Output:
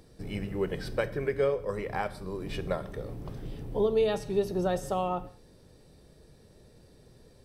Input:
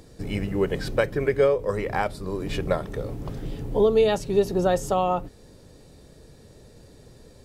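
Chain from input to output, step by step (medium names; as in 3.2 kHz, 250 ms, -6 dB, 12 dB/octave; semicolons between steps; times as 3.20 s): band-stop 6.9 kHz, Q 7.2; gated-style reverb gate 230 ms falling, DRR 12 dB; trim -7 dB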